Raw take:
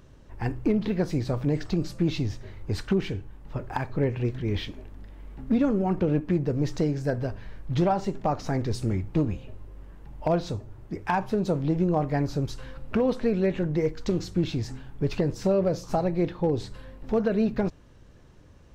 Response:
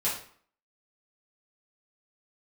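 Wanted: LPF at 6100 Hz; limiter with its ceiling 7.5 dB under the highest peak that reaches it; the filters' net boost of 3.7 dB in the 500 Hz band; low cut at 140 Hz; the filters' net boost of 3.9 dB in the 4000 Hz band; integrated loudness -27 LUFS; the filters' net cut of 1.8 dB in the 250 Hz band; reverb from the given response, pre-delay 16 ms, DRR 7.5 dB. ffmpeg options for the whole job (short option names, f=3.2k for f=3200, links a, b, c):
-filter_complex "[0:a]highpass=140,lowpass=6.1k,equalizer=f=250:t=o:g=-3.5,equalizer=f=500:t=o:g=5.5,equalizer=f=4k:t=o:g=5.5,alimiter=limit=-18dB:level=0:latency=1,asplit=2[a][b];[1:a]atrim=start_sample=2205,adelay=16[c];[b][c]afir=irnorm=-1:irlink=0,volume=-15.5dB[d];[a][d]amix=inputs=2:normalize=0,volume=2dB"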